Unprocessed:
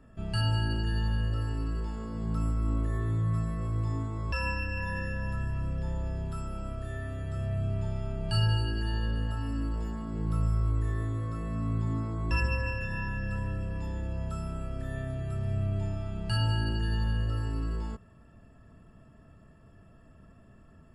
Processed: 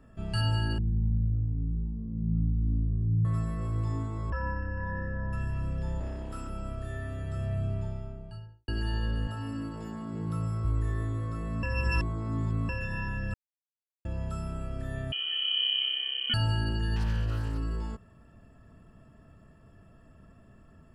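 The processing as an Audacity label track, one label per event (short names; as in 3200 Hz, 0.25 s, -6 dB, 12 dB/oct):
0.780000	3.250000	synth low-pass 180 Hz, resonance Q 1.8
4.300000	5.330000	polynomial smoothing over 41 samples
6.000000	6.500000	minimum comb delay 3.1 ms
7.500000	8.680000	studio fade out
9.270000	10.650000	HPF 89 Hz 24 dB/oct
11.630000	12.690000	reverse
13.340000	14.050000	mute
15.120000	16.340000	inverted band carrier 3100 Hz
16.960000	17.580000	self-modulated delay depth 0.33 ms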